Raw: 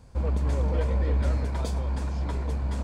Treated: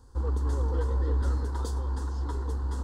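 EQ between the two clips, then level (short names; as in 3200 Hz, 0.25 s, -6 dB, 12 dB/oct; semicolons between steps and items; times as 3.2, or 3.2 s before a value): fixed phaser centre 630 Hz, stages 6; 0.0 dB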